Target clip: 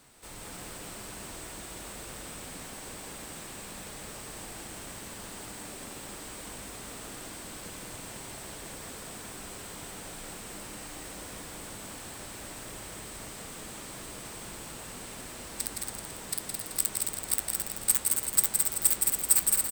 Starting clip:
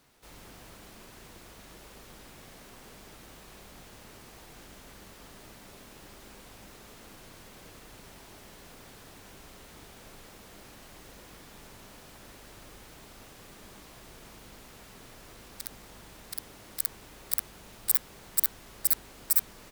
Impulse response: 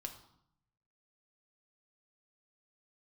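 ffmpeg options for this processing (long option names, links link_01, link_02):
-filter_complex "[0:a]asoftclip=type=tanh:threshold=-20.5dB,asplit=2[link_01][link_02];[link_02]aecho=0:1:166.2|282.8:0.562|0.316[link_03];[link_01][link_03]amix=inputs=2:normalize=0,flanger=delay=9.2:depth=2:regen=-73:speed=0.23:shape=triangular,equalizer=frequency=8200:width=5.5:gain=13.5,asplit=2[link_04][link_05];[link_05]aecho=0:1:216:0.531[link_06];[link_04][link_06]amix=inputs=2:normalize=0,volume=9dB"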